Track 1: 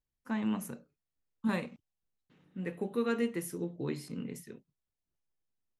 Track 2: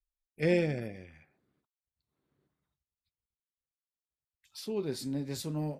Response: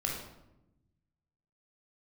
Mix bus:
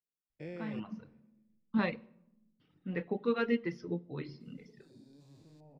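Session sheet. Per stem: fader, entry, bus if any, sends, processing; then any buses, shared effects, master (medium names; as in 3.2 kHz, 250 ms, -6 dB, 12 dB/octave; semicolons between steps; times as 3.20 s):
+1.5 dB, 0.30 s, send -14 dB, no echo send, elliptic low-pass 5.3 kHz, stop band 40 dB; auto duck -12 dB, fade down 0.50 s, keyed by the second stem
-15.0 dB, 0.00 s, no send, echo send -15.5 dB, spectrogram pixelated in time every 400 ms; peaking EQ 11 kHz -6 dB 0.76 oct; three bands expanded up and down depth 40%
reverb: on, RT60 0.90 s, pre-delay 19 ms
echo: feedback delay 123 ms, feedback 55%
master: reverb removal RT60 1.5 s; treble shelf 9.4 kHz -7.5 dB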